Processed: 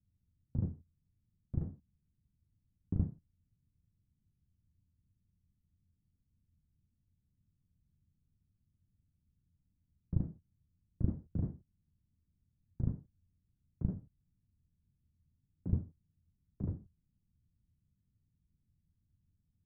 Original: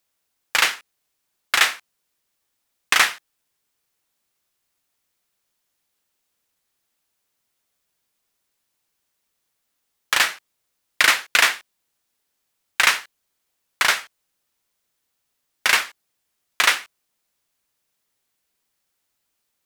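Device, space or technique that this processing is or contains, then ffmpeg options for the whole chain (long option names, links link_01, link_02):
the neighbour's flat through the wall: -af "lowpass=frequency=170:width=0.5412,lowpass=frequency=170:width=1.3066,equalizer=frequency=84:width_type=o:width=0.41:gain=8,volume=18dB"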